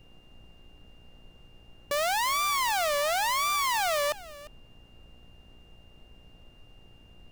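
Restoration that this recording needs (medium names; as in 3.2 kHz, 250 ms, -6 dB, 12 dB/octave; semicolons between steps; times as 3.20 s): de-hum 58.9 Hz, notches 14; band-stop 2.8 kHz, Q 30; noise print and reduce 22 dB; inverse comb 350 ms -18.5 dB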